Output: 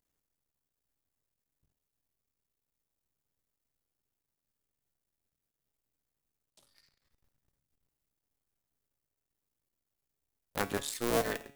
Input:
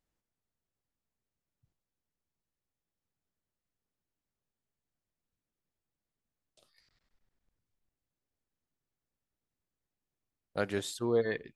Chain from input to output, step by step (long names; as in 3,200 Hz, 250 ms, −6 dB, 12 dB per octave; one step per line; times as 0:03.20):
sub-harmonics by changed cycles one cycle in 2, muted
high-shelf EQ 7,200 Hz +10.5 dB
tuned comb filter 140 Hz, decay 0.59 s, harmonics all, mix 60%
level +8 dB